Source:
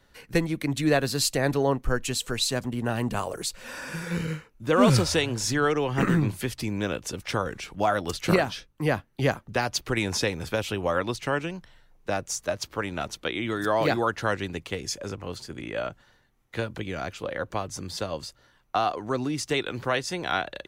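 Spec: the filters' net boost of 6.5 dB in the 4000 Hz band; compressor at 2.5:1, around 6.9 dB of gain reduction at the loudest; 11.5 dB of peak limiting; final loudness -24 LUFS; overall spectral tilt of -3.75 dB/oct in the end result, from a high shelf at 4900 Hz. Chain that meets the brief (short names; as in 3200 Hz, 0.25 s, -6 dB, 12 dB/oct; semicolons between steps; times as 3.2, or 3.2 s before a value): bell 4000 Hz +5 dB; high shelf 4900 Hz +6 dB; compressor 2.5:1, threshold -25 dBFS; gain +9 dB; limiter -13.5 dBFS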